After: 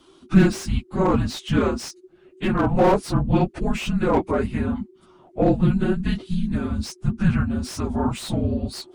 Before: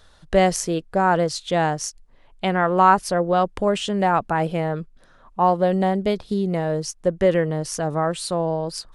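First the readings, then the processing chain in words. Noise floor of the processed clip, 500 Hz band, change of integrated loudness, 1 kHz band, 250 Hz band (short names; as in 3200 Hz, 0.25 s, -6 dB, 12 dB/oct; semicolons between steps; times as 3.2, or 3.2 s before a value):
-54 dBFS, -4.0 dB, -1.0 dB, -8.0 dB, +3.5 dB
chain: phase scrambler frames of 50 ms; frequency shift -390 Hz; slew limiter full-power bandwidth 130 Hz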